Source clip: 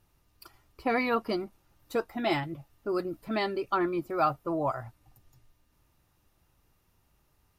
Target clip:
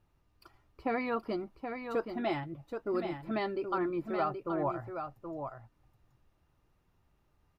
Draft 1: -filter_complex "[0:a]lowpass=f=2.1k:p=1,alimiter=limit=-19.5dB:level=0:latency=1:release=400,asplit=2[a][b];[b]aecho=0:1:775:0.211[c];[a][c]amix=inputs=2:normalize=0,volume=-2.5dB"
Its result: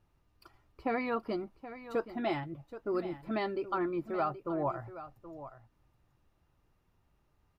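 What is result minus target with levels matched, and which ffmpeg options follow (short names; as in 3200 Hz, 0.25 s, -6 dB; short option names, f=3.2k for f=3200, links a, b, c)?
echo-to-direct -6.5 dB
-filter_complex "[0:a]lowpass=f=2.1k:p=1,alimiter=limit=-19.5dB:level=0:latency=1:release=400,asplit=2[a][b];[b]aecho=0:1:775:0.447[c];[a][c]amix=inputs=2:normalize=0,volume=-2.5dB"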